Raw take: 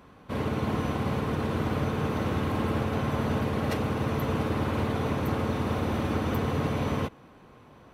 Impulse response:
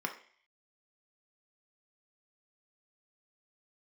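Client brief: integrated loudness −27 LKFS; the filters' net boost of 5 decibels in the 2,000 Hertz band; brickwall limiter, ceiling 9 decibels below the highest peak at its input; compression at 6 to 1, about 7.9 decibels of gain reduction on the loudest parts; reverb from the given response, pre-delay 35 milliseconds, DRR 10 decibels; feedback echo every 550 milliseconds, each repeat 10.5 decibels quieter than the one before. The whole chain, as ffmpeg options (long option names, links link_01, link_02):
-filter_complex "[0:a]equalizer=frequency=2000:width_type=o:gain=6.5,acompressor=threshold=-32dB:ratio=6,alimiter=level_in=7.5dB:limit=-24dB:level=0:latency=1,volume=-7.5dB,aecho=1:1:550|1100|1650:0.299|0.0896|0.0269,asplit=2[link_01][link_02];[1:a]atrim=start_sample=2205,adelay=35[link_03];[link_02][link_03]afir=irnorm=-1:irlink=0,volume=-14dB[link_04];[link_01][link_04]amix=inputs=2:normalize=0,volume=13dB"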